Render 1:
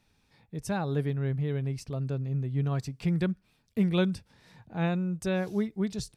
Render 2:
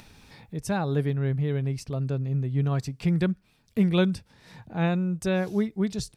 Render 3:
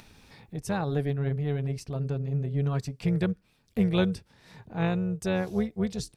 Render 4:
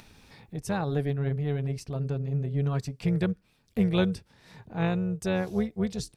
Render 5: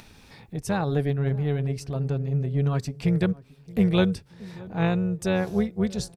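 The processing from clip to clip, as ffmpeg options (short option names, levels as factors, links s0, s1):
-af "acompressor=mode=upward:threshold=0.00708:ratio=2.5,volume=1.5"
-af "tremolo=f=290:d=0.519"
-af anull
-filter_complex "[0:a]asplit=2[s0][s1];[s1]adelay=626,lowpass=f=890:p=1,volume=0.1,asplit=2[s2][s3];[s3]adelay=626,lowpass=f=890:p=1,volume=0.38,asplit=2[s4][s5];[s5]adelay=626,lowpass=f=890:p=1,volume=0.38[s6];[s0][s2][s4][s6]amix=inputs=4:normalize=0,volume=1.5"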